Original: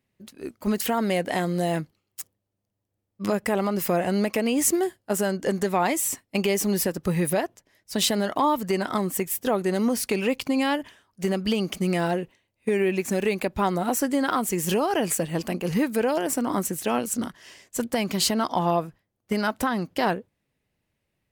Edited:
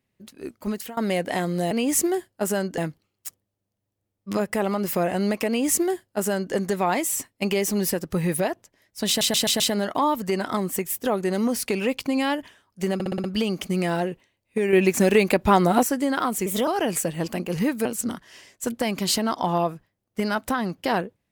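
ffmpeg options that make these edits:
-filter_complex "[0:a]asplit=18[s0][s1][s2][s3][s4][s5][s6][s7][s8][s9][s10][s11][s12][s13][s14][s15][s16][s17];[s0]atrim=end=0.97,asetpts=PTS-STARTPTS,afade=t=out:st=0.55:d=0.42:silence=0.1[s18];[s1]atrim=start=0.97:end=1.712,asetpts=PTS-STARTPTS,afade=t=in:d=0.004:c=hsin:silence=0.1[s19];[s2]atrim=start=4.398:end=5.472[s20];[s3]atrim=start=1.708:end=8.142[s21];[s4]atrim=start=8.008:end=8.142[s22];[s5]atrim=start=8.008:end=8.142[s23];[s6]atrim=start=8.008:end=8.142[s24];[s7]atrim=start=8.008:end=11.412[s25];[s8]atrim=start=11.348:end=11.412[s26];[s9]atrim=start=11.348:end=11.412[s27];[s10]atrim=start=11.348:end=11.412[s28];[s11]atrim=start=11.348:end=11.412[s29];[s12]atrim=start=11.348:end=12.842[s30];[s13]atrim=start=12.838:end=13.942,asetpts=PTS-STARTPTS,volume=2.11[s31];[s14]atrim=start=13.938:end=14.574[s32];[s15]atrim=start=14.57:end=14.82,asetpts=PTS-STARTPTS,asetrate=51597,aresample=44100,atrim=end_sample=9423,asetpts=PTS-STARTPTS[s33];[s16]atrim=start=14.816:end=16.002[s34];[s17]atrim=start=16.978[s35];[s18][s19]concat=n=2:v=0:a=1[s36];[s36][s20]acrossfade=d=0.004:c1=hsin:c2=hsin[s37];[s37][s21]acrossfade=d=0.004:c1=hsin:c2=hsin[s38];[s38][s22]acrossfade=d=0.004:c1=hsin:c2=hsin[s39];[s39][s23]acrossfade=d=0.004:c1=hsin:c2=hsin[s40];[s40][s24]acrossfade=d=0.004:c1=hsin:c2=hsin[s41];[s41][s25]acrossfade=d=0.004:c1=hsin:c2=hsin[s42];[s42][s26]acrossfade=d=0.004:c1=hsin:c2=hsin[s43];[s43][s27]acrossfade=d=0.004:c1=hsin:c2=hsin[s44];[s44][s28]acrossfade=d=0.004:c1=hsin:c2=hsin[s45];[s45][s29]acrossfade=d=0.004:c1=hsin:c2=hsin[s46];[s46][s30]acrossfade=d=0.004:c1=hsin:c2=hsin[s47];[s47][s31]acrossfade=d=0.004:c1=hsin:c2=hsin[s48];[s48][s32]acrossfade=d=0.004:c1=hsin:c2=hsin[s49];[s49][s33]acrossfade=d=0.004:c1=hsin:c2=hsin[s50];[s50][s34]acrossfade=d=0.004:c1=hsin:c2=hsin[s51];[s51][s35]acrossfade=d=0.004:c1=hsin:c2=hsin"

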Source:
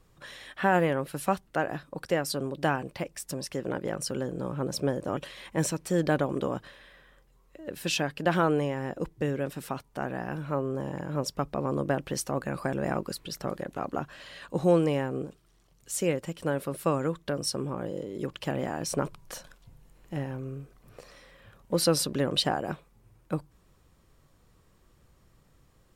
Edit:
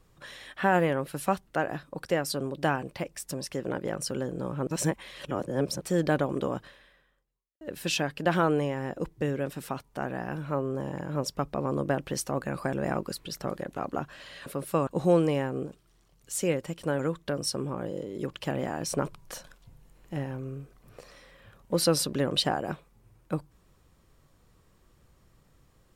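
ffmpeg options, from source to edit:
-filter_complex "[0:a]asplit=7[s0][s1][s2][s3][s4][s5][s6];[s0]atrim=end=4.672[s7];[s1]atrim=start=4.668:end=5.812,asetpts=PTS-STARTPTS,areverse[s8];[s2]atrim=start=5.808:end=7.61,asetpts=PTS-STARTPTS,afade=t=out:st=0.772:d=1.03:c=qua[s9];[s3]atrim=start=7.61:end=14.462,asetpts=PTS-STARTPTS,afade=t=in:d=0.004:c=hsin[s10];[s4]atrim=start=16.578:end=16.992[s11];[s5]atrim=start=14.458:end=16.582[s12];[s6]atrim=start=16.988[s13];[s7][s8]acrossfade=d=0.004:c1=hsin:c2=hsin[s14];[s9][s10]concat=n=2:v=0:a=1[s15];[s14][s15]acrossfade=d=0.004:c1=hsin:c2=hsin[s16];[s16][s11]acrossfade=d=0.004:c1=hsin:c2=hsin[s17];[s17][s12]acrossfade=d=0.004:c1=hsin:c2=hsin[s18];[s18][s13]acrossfade=d=0.004:c1=hsin:c2=hsin"

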